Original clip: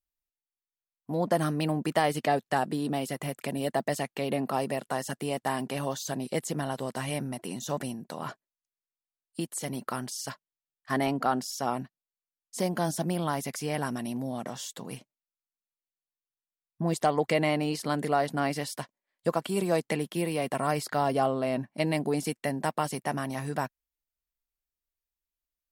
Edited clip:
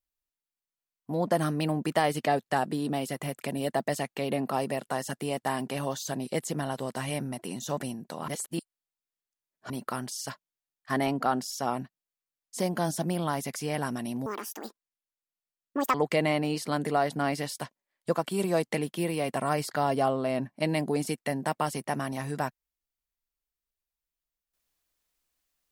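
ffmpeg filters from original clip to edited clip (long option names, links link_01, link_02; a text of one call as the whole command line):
ffmpeg -i in.wav -filter_complex "[0:a]asplit=5[link_01][link_02][link_03][link_04][link_05];[link_01]atrim=end=8.282[link_06];[link_02]atrim=start=8.278:end=9.702,asetpts=PTS-STARTPTS,areverse[link_07];[link_03]atrim=start=9.698:end=14.264[link_08];[link_04]atrim=start=14.26:end=17.12,asetpts=PTS-STARTPTS,asetrate=74970,aresample=44100[link_09];[link_05]atrim=start=17.116[link_10];[link_06][link_07]acrossfade=duration=0.004:curve1=hsin:curve2=hsin[link_11];[link_11][link_08]acrossfade=duration=0.004:curve1=hsin:curve2=hsin[link_12];[link_12][link_09]acrossfade=duration=0.004:curve1=hsin:curve2=hsin[link_13];[link_13][link_10]acrossfade=duration=0.004:curve1=hsin:curve2=hsin" out.wav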